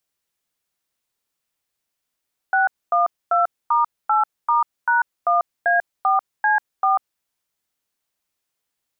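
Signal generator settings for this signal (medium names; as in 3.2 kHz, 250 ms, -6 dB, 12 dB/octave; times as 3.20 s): DTMF "612*8*#1A4C4", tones 143 ms, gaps 248 ms, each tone -17 dBFS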